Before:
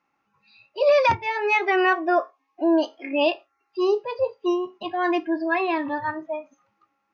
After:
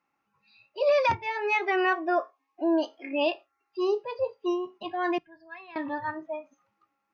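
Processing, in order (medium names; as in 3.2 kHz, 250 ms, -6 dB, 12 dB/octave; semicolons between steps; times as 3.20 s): 5.18–5.76 s: FFT filter 170 Hz 0 dB, 250 Hz -28 dB, 1.5 kHz -13 dB; trim -5 dB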